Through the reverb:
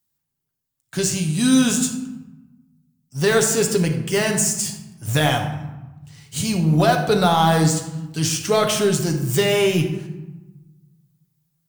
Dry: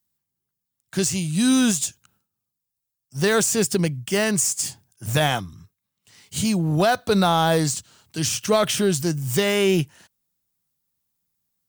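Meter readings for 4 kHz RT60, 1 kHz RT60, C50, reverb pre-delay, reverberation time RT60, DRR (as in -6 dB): 0.60 s, 1.1 s, 7.0 dB, 7 ms, 1.1 s, 2.5 dB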